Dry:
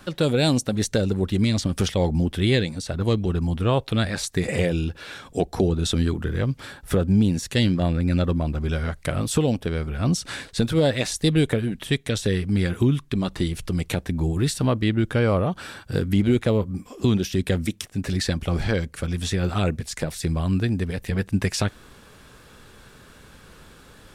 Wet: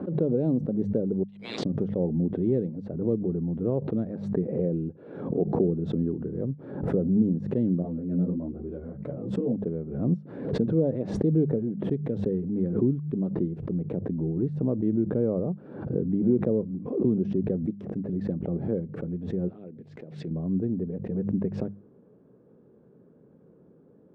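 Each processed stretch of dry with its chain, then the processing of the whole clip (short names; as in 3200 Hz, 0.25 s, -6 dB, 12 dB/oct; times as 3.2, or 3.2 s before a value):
1.23–1.65 inverse Chebyshev high-pass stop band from 430 Hz, stop band 80 dB + sample leveller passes 2
7.82–9.53 doubler 16 ms -3 dB + ensemble effect
19.48–20.31 weighting filter D + compressor 8:1, threshold -31 dBFS
whole clip: Chebyshev band-pass 160–460 Hz, order 2; notches 50/100/150/200 Hz; backwards sustainer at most 68 dB/s; gain -2 dB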